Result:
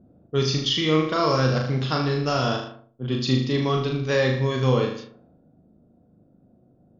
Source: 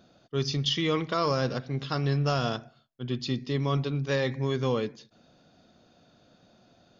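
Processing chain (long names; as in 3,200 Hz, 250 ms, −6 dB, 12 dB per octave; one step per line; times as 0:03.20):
speech leveller within 3 dB 0.5 s
flutter between parallel walls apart 6.6 metres, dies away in 0.6 s
low-pass that shuts in the quiet parts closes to 320 Hz, open at −26 dBFS
level +4.5 dB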